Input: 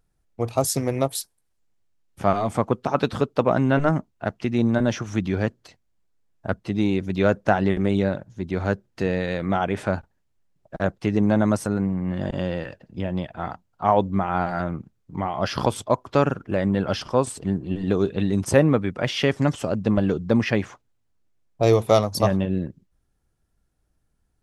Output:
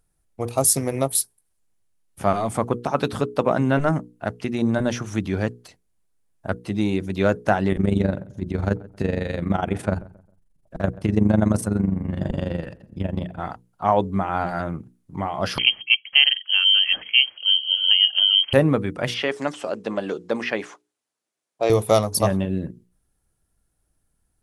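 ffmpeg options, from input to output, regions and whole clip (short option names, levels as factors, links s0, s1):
-filter_complex "[0:a]asettb=1/sr,asplit=3[s0][s1][s2];[s0]atrim=end=7.724[s3];[s1]atrim=start=7.72:end=13.4,asetpts=PTS-STARTPTS,afade=t=in:d=0.004:c=qsin,afade=t=out:st=5.676:d=0.004:c=qsin,lowshelf=f=310:g=8,tremolo=f=24:d=0.788,asplit=2[s4][s5];[s5]adelay=134,lowpass=f=1500:p=1,volume=0.1,asplit=2[s6][s7];[s7]adelay=134,lowpass=f=1500:p=1,volume=0.35,asplit=2[s8][s9];[s9]adelay=134,lowpass=f=1500:p=1,volume=0.35[s10];[s4][s6][s8][s10]amix=inputs=4:normalize=0,atrim=end_sample=250488[s11];[s2]atrim=start=13.396[s12];[s3][s11]acrossfade=d=0.004:c1=hsin:c2=qsin[s13];[s13][s12]acrossfade=d=0.004:c1=qsin:c2=hsin,asettb=1/sr,asplit=3[s14][s15][s16];[s14]atrim=end=15.584[s17];[s15]atrim=start=15.58:end=18.53,asetpts=PTS-STARTPTS,afade=t=in:d=0.004:c=qsin,afade=t=out:st=2.946:d=0.004:c=qsin,tiltshelf=f=870:g=5,lowpass=f=2800:t=q:w=0.5098,lowpass=f=2800:t=q:w=0.6013,lowpass=f=2800:t=q:w=0.9,lowpass=f=2800:t=q:w=2.563,afreqshift=-3300[s18];[s16]atrim=start=18.526[s19];[s17][s18]acrossfade=d=0.004:c1=hsin:c2=qsin[s20];[s20][s19]acrossfade=d=0.004:c1=qsin:c2=hsin,asettb=1/sr,asplit=3[s21][s22][s23];[s21]atrim=end=19.144[s24];[s22]atrim=start=19.14:end=21.7,asetpts=PTS-STARTPTS,afade=t=in:d=0.004:c=qsin,afade=t=out:st=2.556:d=0.004:c=qsin,acrossover=split=3700[s25][s26];[s26]acompressor=threshold=0.00355:ratio=4:attack=1:release=60[s27];[s25][s27]amix=inputs=2:normalize=0,highpass=370,lowpass=7200,highshelf=f=4400:g=5.5[s28];[s23]atrim=start=21.696[s29];[s24][s28]acrossfade=d=0.004:c1=hsin:c2=qsin[s30];[s30][s29]acrossfade=d=0.004:c1=qsin:c2=hsin,equalizer=f=10000:t=o:w=0.57:g=12.5,bandreject=f=60:t=h:w=6,bandreject=f=120:t=h:w=6,bandreject=f=180:t=h:w=6,bandreject=f=240:t=h:w=6,bandreject=f=300:t=h:w=6,bandreject=f=360:t=h:w=6,bandreject=f=420:t=h:w=6,bandreject=f=480:t=h:w=6"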